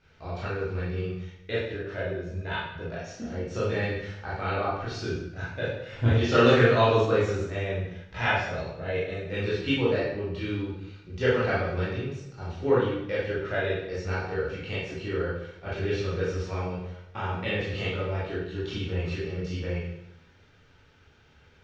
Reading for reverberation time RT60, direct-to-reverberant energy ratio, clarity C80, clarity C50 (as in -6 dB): 0.85 s, -9.0 dB, 4.5 dB, 0.0 dB